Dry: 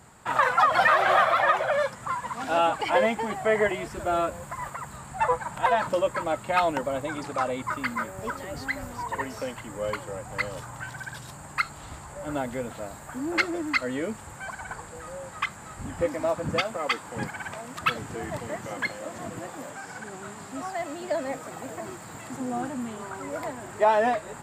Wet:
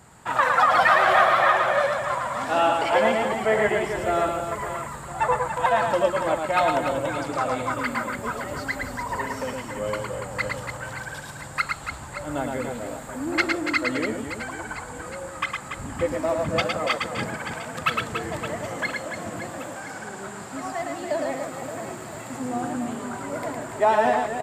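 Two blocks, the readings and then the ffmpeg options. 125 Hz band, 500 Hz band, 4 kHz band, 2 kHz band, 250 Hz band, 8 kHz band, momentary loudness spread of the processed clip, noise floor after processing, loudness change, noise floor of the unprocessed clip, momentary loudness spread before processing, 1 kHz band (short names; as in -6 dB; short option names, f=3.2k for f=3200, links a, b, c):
+3.5 dB, +3.0 dB, +3.0 dB, +3.0 dB, +3.0 dB, +3.0 dB, 15 LU, -38 dBFS, +3.0 dB, -43 dBFS, 16 LU, +3.0 dB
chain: -af "aecho=1:1:110|286|567.6|1018|1739:0.631|0.398|0.251|0.158|0.1,aresample=32000,aresample=44100,volume=1dB"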